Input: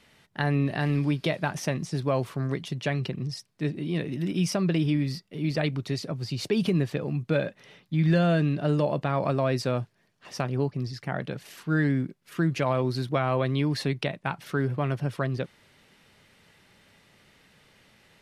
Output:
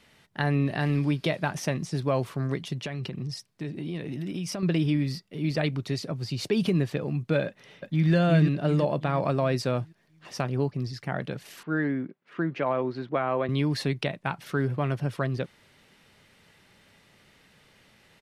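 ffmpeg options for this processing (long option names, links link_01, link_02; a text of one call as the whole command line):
ffmpeg -i in.wav -filter_complex "[0:a]asettb=1/sr,asplit=3[link_01][link_02][link_03];[link_01]atrim=end=2.854[link_04];[link_02]atrim=start=2.85:end=4.63,asetpts=PTS-STARTPTS,afade=type=in:duration=0.004:curve=qsin,afade=type=out:start_time=1.776:duration=0.004:curve=qsin,acompressor=threshold=-29dB:ratio=6:attack=3.2:release=140:knee=1:detection=peak[link_05];[link_03]atrim=start=4.626[link_06];[link_04][link_05]acrossfade=duration=0.004:curve1=hsin:curve2=qsin[link_07];[link_07][link_06]acrossfade=duration=0.004:curve1=qsin:curve2=hsin,asplit=2[link_08][link_09];[link_09]afade=type=in:start_time=7.46:duration=0.01,afade=type=out:start_time=8.12:duration=0.01,aecho=0:1:360|720|1080|1440|1800|2160:0.707946|0.318576|0.143359|0.0645116|0.0290302|0.0130636[link_10];[link_08][link_10]amix=inputs=2:normalize=0,asettb=1/sr,asplit=3[link_11][link_12][link_13];[link_11]atrim=end=11.634[link_14];[link_12]atrim=start=11.63:end=13.49,asetpts=PTS-STARTPTS,afade=type=in:duration=0.004:curve=qsin,afade=type=out:start_time=1.856:duration=0.004:curve=qsin,highpass=230,lowpass=2200[link_15];[link_13]atrim=start=13.486[link_16];[link_14][link_15]acrossfade=duration=0.004:curve1=hsin:curve2=qsin[link_17];[link_17][link_16]acrossfade=duration=0.004:curve1=qsin:curve2=hsin" out.wav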